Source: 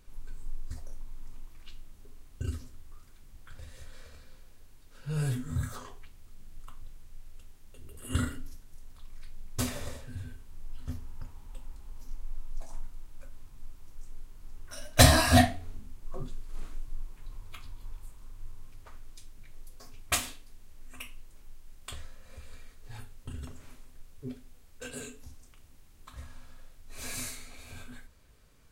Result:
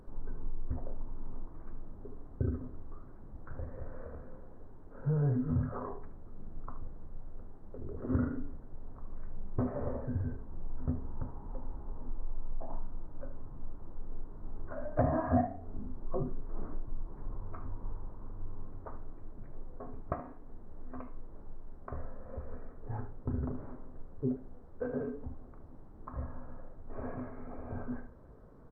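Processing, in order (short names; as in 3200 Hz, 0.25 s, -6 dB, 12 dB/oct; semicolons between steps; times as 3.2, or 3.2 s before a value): low shelf 120 Hz -12 dB; compressor 3:1, threshold -43 dBFS, peak gain reduction 20.5 dB; Gaussian blur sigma 8.6 samples; on a send: echo 75 ms -13 dB; on the sum: gain +14.5 dB; SBC 128 kbps 32000 Hz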